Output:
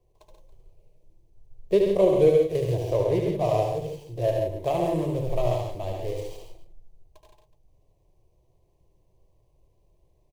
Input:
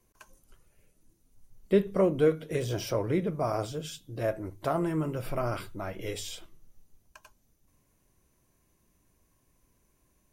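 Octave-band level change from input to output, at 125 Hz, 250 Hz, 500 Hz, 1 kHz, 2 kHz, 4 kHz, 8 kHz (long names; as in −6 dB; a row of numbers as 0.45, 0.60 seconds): +5.0 dB, +1.5 dB, +7.0 dB, +4.5 dB, −3.0 dB, −1.0 dB, can't be measured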